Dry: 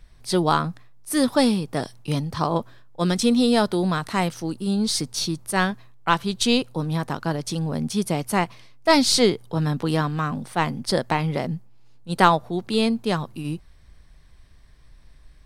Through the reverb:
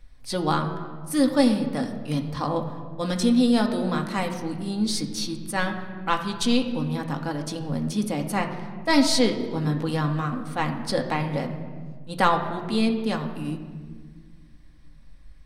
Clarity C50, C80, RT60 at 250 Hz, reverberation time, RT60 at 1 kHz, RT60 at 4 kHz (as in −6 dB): 8.5 dB, 10.0 dB, 2.7 s, 1.5 s, 1.4 s, 1.1 s